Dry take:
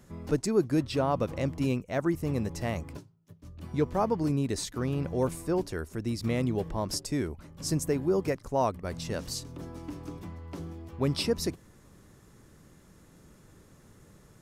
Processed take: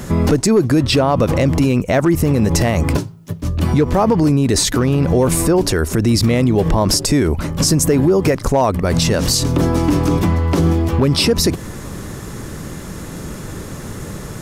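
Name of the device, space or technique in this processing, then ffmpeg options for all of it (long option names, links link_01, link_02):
loud club master: -af "acompressor=threshold=-31dB:ratio=2.5,asoftclip=type=hard:threshold=-24dB,alimiter=level_in=32dB:limit=-1dB:release=50:level=0:latency=1,volume=-5dB"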